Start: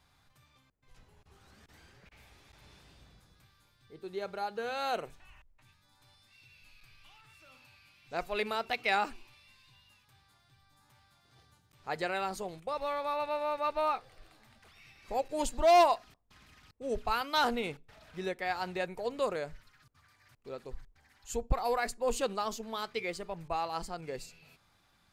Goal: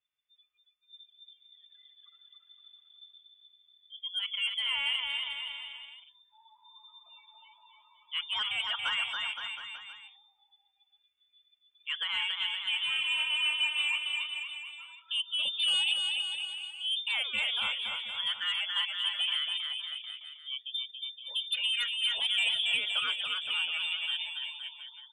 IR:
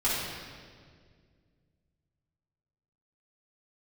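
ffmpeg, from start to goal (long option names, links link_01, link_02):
-filter_complex "[0:a]alimiter=level_in=1dB:limit=-24dB:level=0:latency=1:release=116,volume=-1dB,lowpass=frequency=3100:width_type=q:width=0.5098,lowpass=frequency=3100:width_type=q:width=0.6013,lowpass=frequency=3100:width_type=q:width=0.9,lowpass=frequency=3100:width_type=q:width=2.563,afreqshift=-3600,asoftclip=type=tanh:threshold=-29.5dB,asplit=3[link_01][link_02][link_03];[link_01]afade=type=out:start_time=22.24:duration=0.02[link_04];[link_02]highshelf=frequency=2100:gain=7.5,afade=type=in:start_time=22.24:duration=0.02,afade=type=out:start_time=22.75:duration=0.02[link_05];[link_03]afade=type=in:start_time=22.75:duration=0.02[link_06];[link_04][link_05][link_06]amix=inputs=3:normalize=0,afftdn=noise_reduction=29:noise_floor=-49,aecho=1:1:280|518|720.3|892.3|1038:0.631|0.398|0.251|0.158|0.1,volume=4.5dB"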